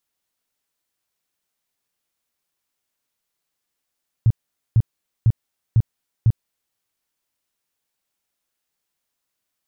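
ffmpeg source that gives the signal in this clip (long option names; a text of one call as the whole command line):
ffmpeg -f lavfi -i "aevalsrc='0.316*sin(2*PI*113*mod(t,0.5))*lt(mod(t,0.5),5/113)':duration=2.5:sample_rate=44100" out.wav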